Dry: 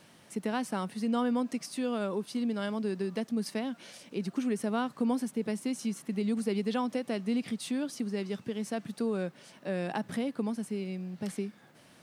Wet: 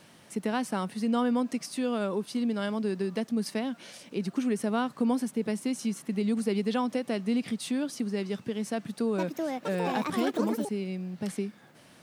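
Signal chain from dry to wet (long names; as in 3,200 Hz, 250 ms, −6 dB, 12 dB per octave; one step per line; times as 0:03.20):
0:08.71–0:10.79: delay with pitch and tempo change per echo 469 ms, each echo +6 semitones, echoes 2
level +2.5 dB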